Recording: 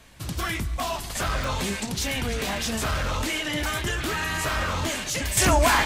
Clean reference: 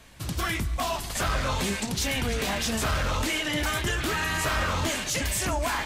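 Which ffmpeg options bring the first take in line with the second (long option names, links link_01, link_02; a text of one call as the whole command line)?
ffmpeg -i in.wav -af "adeclick=threshold=4,asetnsamples=nb_out_samples=441:pad=0,asendcmd='5.37 volume volume -8.5dB',volume=0dB" out.wav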